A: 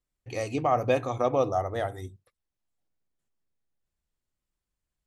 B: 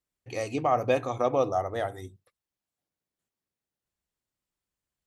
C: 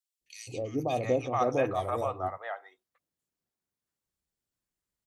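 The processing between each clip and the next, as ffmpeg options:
-af "highpass=f=120:p=1"
-filter_complex "[0:a]acrossover=split=700|2800[a][b][c];[a]adelay=210[d];[b]adelay=680[e];[d][e][c]amix=inputs=3:normalize=0"

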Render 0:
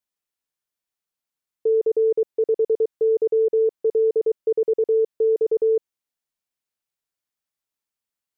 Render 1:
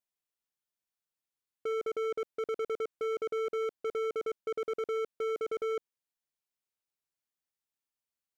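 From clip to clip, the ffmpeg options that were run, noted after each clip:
-af "volume=25dB,asoftclip=hard,volume=-25dB,volume=-6dB"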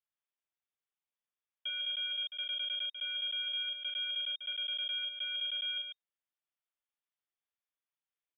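-af "lowpass=f=3.1k:t=q:w=0.5098,lowpass=f=3.1k:t=q:w=0.6013,lowpass=f=3.1k:t=q:w=0.9,lowpass=f=3.1k:t=q:w=2.563,afreqshift=-3700,aecho=1:1:37.9|142.9:0.631|0.398,volume=-4dB"

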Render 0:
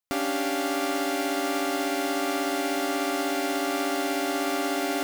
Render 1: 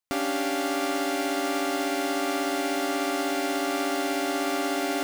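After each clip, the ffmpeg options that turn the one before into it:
-af "equalizer=f=16k:w=1.3:g=-5.5"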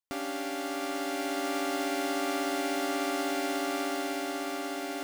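-af "dynaudnorm=f=220:g=11:m=4dB,volume=-7.5dB"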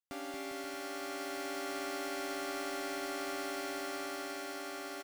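-filter_complex "[0:a]acrossover=split=550[a][b];[b]asoftclip=type=hard:threshold=-27.5dB[c];[a][c]amix=inputs=2:normalize=0,aecho=1:1:230|402.5|531.9|628.9|701.7:0.631|0.398|0.251|0.158|0.1,volume=-7.5dB"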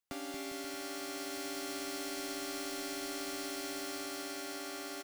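-filter_complex "[0:a]acrossover=split=290|3000[a][b][c];[b]acompressor=threshold=-48dB:ratio=6[d];[a][d][c]amix=inputs=3:normalize=0,volume=4dB"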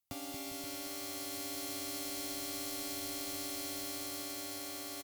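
-af "acrusher=bits=4:mode=log:mix=0:aa=0.000001,equalizer=f=100:t=o:w=0.67:g=10,equalizer=f=400:t=o:w=0.67:g=-7,equalizer=f=1.6k:t=o:w=0.67:g=-10,equalizer=f=16k:t=o:w=0.67:g=9,aecho=1:1:525:0.299"

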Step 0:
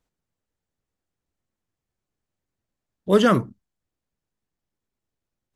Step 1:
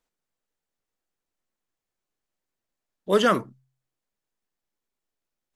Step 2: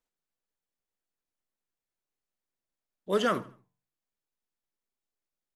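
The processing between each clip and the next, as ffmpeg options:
-af "equalizer=f=82:w=0.44:g=-14,bandreject=f=65.57:t=h:w=4,bandreject=f=131.14:t=h:w=4"
-af "aecho=1:1:78|156|234:0.1|0.037|0.0137,flanger=delay=7.8:depth=6.5:regen=-82:speed=1.2:shape=sinusoidal,volume=-2.5dB"

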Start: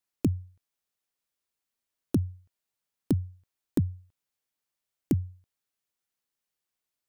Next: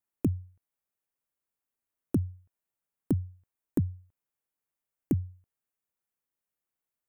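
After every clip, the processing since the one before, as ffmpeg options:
-af "equalizer=f=4.4k:w=0.98:g=-13,volume=-1.5dB"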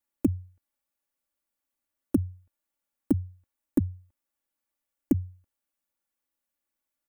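-af "aecho=1:1:3.5:0.97"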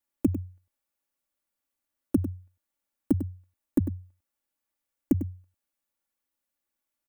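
-filter_complex "[0:a]asplit=2[a][b];[b]adelay=99.13,volume=-11dB,highshelf=f=4k:g=-2.23[c];[a][c]amix=inputs=2:normalize=0"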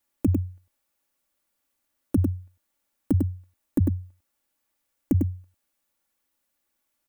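-af "alimiter=limit=-21dB:level=0:latency=1:release=32,volume=8dB"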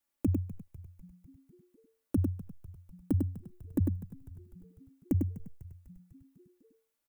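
-filter_complex "[0:a]asplit=7[a][b][c][d][e][f][g];[b]adelay=249,afreqshift=-90,volume=-15.5dB[h];[c]adelay=498,afreqshift=-180,volume=-19.9dB[i];[d]adelay=747,afreqshift=-270,volume=-24.4dB[j];[e]adelay=996,afreqshift=-360,volume=-28.8dB[k];[f]adelay=1245,afreqshift=-450,volume=-33.2dB[l];[g]adelay=1494,afreqshift=-540,volume=-37.7dB[m];[a][h][i][j][k][l][m]amix=inputs=7:normalize=0,volume=-6.5dB"

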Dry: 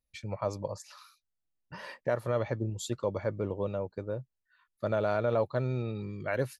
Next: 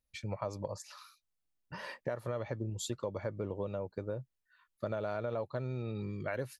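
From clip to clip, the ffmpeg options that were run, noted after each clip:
-af "acompressor=threshold=-33dB:ratio=5"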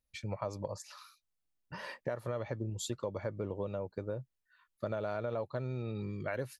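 -af anull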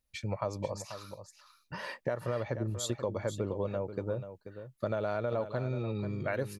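-af "aecho=1:1:486:0.282,volume=3.5dB"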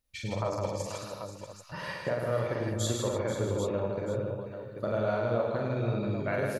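-af "aecho=1:1:43|102|158|222|299|788:0.708|0.531|0.631|0.376|0.266|0.376"

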